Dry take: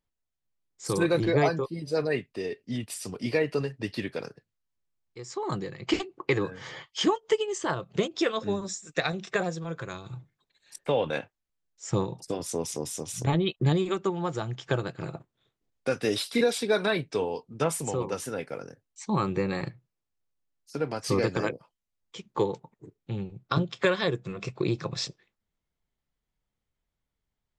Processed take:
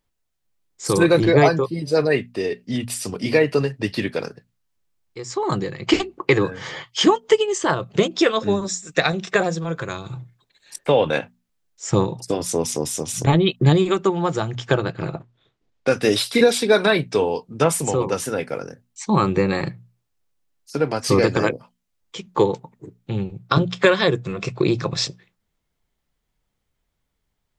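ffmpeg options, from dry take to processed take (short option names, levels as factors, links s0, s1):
-filter_complex "[0:a]asettb=1/sr,asplit=3[s0][s1][s2];[s0]atrim=end=14.744[s3];[s1]atrim=start=14.74:end=15.88,asetpts=PTS-STARTPTS,afade=t=in:d=0.004:c=qsin,afade=t=out:st=1.136:d=0.004:c=qsin,lowpass=5200[s4];[s2]atrim=start=15.876[s5];[s3][s4]acrossfade=d=0.004:c1=hsin:c2=qsin[s6];[s6][s5]acrossfade=d=0.004:c1=qsin:c2=hsin,bandreject=f=60:t=h:w=6,bandreject=f=120:t=h:w=6,bandreject=f=180:t=h:w=6,bandreject=f=240:t=h:w=6,volume=2.82"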